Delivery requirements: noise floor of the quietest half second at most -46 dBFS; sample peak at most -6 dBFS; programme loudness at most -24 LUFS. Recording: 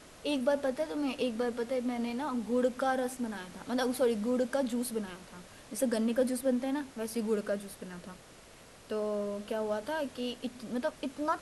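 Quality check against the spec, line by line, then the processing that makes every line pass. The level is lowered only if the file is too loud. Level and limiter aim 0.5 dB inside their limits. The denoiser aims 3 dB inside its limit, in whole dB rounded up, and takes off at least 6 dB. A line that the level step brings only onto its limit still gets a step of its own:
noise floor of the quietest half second -54 dBFS: OK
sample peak -17.0 dBFS: OK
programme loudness -33.0 LUFS: OK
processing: none

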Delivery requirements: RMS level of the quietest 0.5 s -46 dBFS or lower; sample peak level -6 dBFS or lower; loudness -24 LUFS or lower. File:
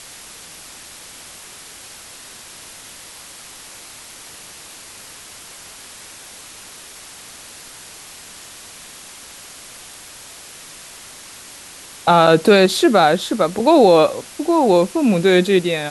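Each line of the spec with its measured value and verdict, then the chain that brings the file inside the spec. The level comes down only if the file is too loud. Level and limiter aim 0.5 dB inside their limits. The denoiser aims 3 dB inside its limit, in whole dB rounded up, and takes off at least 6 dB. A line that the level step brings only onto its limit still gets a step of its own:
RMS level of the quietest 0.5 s -39 dBFS: fail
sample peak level -1.5 dBFS: fail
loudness -14.5 LUFS: fail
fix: gain -10 dB

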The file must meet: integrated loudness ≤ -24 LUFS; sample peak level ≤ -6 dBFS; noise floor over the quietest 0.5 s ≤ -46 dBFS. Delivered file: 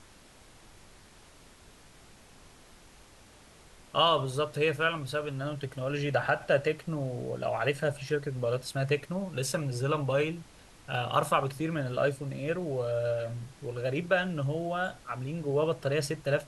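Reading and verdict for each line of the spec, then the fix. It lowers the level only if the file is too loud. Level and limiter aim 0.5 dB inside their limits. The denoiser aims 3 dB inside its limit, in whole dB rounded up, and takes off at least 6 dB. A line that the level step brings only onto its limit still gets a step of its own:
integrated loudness -30.5 LUFS: OK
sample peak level -12.5 dBFS: OK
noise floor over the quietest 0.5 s -55 dBFS: OK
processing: none

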